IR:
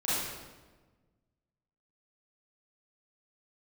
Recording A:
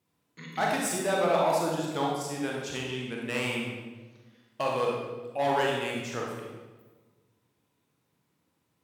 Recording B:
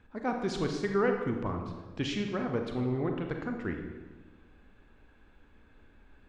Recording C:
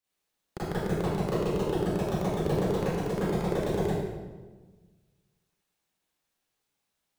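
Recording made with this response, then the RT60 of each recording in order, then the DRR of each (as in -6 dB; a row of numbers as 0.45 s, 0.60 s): C; 1.3 s, 1.3 s, 1.3 s; -2.5 dB, 3.5 dB, -11.5 dB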